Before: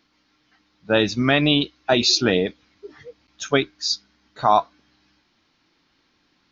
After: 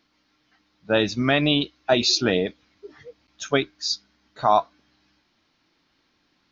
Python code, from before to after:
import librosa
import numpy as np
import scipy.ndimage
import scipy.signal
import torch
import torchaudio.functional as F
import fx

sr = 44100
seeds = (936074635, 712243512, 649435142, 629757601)

y = fx.peak_eq(x, sr, hz=630.0, db=3.0, octaves=0.26)
y = F.gain(torch.from_numpy(y), -2.5).numpy()